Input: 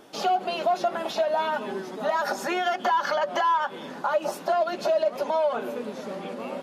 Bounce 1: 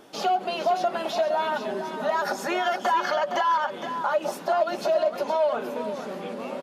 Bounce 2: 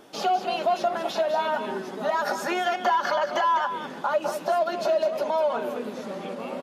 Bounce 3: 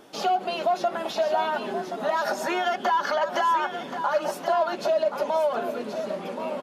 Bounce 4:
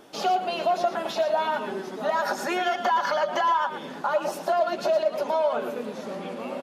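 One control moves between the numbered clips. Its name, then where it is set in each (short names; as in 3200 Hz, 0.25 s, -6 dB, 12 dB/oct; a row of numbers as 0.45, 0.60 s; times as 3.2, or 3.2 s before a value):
echo, time: 0.463, 0.201, 1.076, 0.114 s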